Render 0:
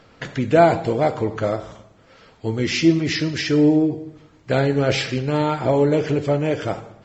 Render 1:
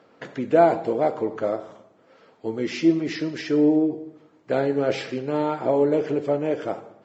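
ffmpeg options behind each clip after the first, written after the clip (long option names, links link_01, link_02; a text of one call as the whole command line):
ffmpeg -i in.wav -af "highpass=280,tiltshelf=frequency=1400:gain=6,volume=-6dB" out.wav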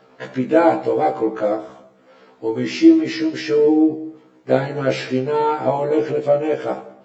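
ffmpeg -i in.wav -af "afftfilt=real='re*1.73*eq(mod(b,3),0)':imag='im*1.73*eq(mod(b,3),0)':win_size=2048:overlap=0.75,volume=7.5dB" out.wav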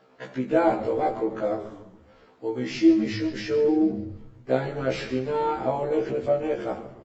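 ffmpeg -i in.wav -filter_complex "[0:a]asplit=6[link_01][link_02][link_03][link_04][link_05][link_06];[link_02]adelay=142,afreqshift=-110,volume=-14dB[link_07];[link_03]adelay=284,afreqshift=-220,volume=-20dB[link_08];[link_04]adelay=426,afreqshift=-330,volume=-26dB[link_09];[link_05]adelay=568,afreqshift=-440,volume=-32.1dB[link_10];[link_06]adelay=710,afreqshift=-550,volume=-38.1dB[link_11];[link_01][link_07][link_08][link_09][link_10][link_11]amix=inputs=6:normalize=0,volume=-7dB" out.wav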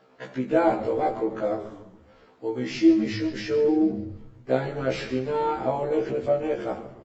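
ffmpeg -i in.wav -af anull out.wav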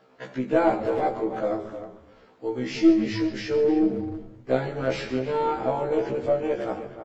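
ffmpeg -i in.wav -filter_complex "[0:a]aeval=exprs='0.398*(cos(1*acos(clip(val(0)/0.398,-1,1)))-cos(1*PI/2))+0.0178*(cos(4*acos(clip(val(0)/0.398,-1,1)))-cos(4*PI/2))':channel_layout=same,asplit=2[link_01][link_02];[link_02]adelay=310,highpass=300,lowpass=3400,asoftclip=type=hard:threshold=-18dB,volume=-11dB[link_03];[link_01][link_03]amix=inputs=2:normalize=0" out.wav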